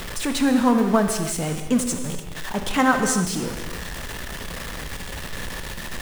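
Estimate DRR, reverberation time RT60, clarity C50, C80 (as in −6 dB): 5.5 dB, non-exponential decay, 6.5 dB, 7.5 dB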